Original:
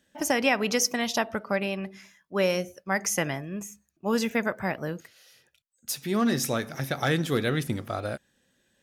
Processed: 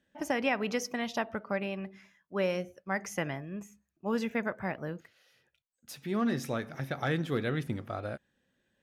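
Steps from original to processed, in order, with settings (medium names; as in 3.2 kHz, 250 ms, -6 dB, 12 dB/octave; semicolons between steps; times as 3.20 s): tone controls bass +1 dB, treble -11 dB; trim -5.5 dB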